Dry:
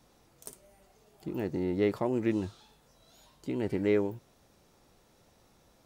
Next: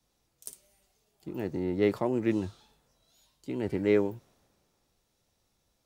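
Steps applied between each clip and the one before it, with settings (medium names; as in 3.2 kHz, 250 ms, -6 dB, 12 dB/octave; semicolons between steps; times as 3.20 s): three bands expanded up and down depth 40%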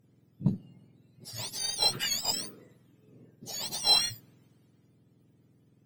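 spectrum inverted on a logarithmic axis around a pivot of 1.3 kHz; bass shelf 250 Hz +5.5 dB; Chebyshev shaper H 7 -34 dB, 8 -27 dB, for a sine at -15.5 dBFS; trim +3.5 dB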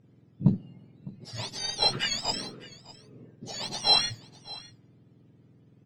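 distance through air 120 m; delay 606 ms -20 dB; trim +5.5 dB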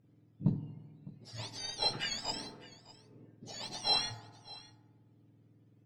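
FDN reverb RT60 1.3 s, low-frequency decay 0.9×, high-frequency decay 0.3×, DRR 8.5 dB; trim -8 dB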